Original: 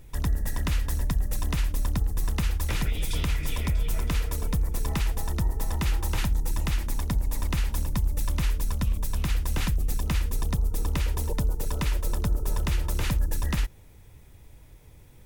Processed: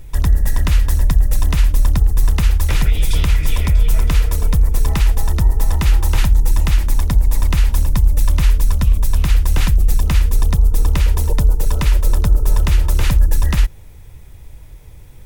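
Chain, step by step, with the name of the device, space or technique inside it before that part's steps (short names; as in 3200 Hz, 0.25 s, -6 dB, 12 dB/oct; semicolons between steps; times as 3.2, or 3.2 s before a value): low shelf boost with a cut just above (low shelf 70 Hz +7.5 dB; bell 250 Hz -3 dB 1.1 oct); gain +8 dB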